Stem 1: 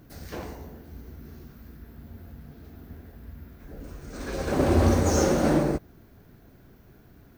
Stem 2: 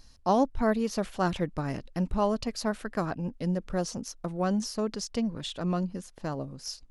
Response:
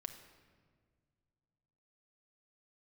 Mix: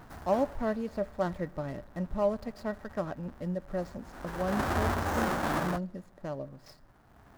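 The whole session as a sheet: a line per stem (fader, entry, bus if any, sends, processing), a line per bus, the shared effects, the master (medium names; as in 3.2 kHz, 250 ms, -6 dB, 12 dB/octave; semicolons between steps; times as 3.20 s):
-5.0 dB, 0.00 s, no send, square wave that keeps the level; high-order bell 1.1 kHz +9.5 dB; auto duck -11 dB, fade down 0.35 s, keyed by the second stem
-7.5 dB, 0.00 s, send -11 dB, median filter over 15 samples; small resonant body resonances 590/1900 Hz, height 13 dB, ringing for 85 ms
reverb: on, RT60 1.8 s, pre-delay 6 ms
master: none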